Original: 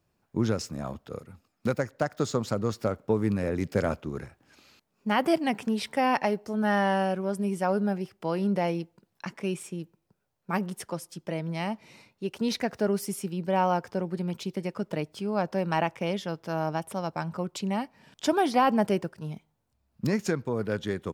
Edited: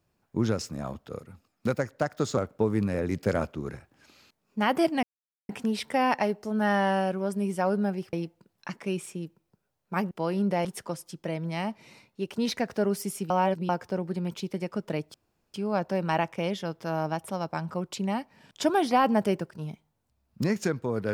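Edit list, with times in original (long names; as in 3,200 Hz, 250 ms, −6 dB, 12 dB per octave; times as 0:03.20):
0:02.37–0:02.86: remove
0:05.52: splice in silence 0.46 s
0:08.16–0:08.70: move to 0:10.68
0:13.33–0:13.72: reverse
0:15.17: splice in room tone 0.40 s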